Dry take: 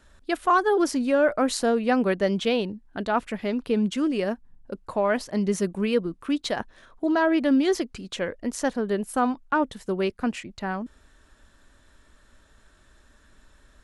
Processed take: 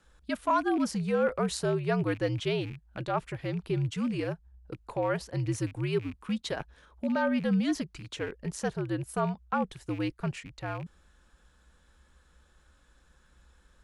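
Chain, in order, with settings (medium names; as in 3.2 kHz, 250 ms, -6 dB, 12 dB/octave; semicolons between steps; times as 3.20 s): rattle on loud lows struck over -40 dBFS, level -32 dBFS; frequency shift -74 Hz; trim -6 dB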